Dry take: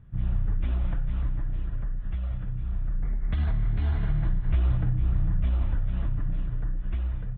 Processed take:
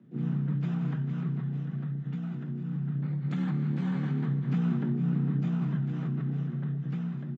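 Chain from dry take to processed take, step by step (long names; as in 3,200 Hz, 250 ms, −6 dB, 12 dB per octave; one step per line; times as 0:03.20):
dynamic equaliser 1,200 Hz, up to +6 dB, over −58 dBFS, Q 1.3
pitch-shifted copies added +12 semitones −11 dB
frequency shifter +110 Hz
level −5.5 dB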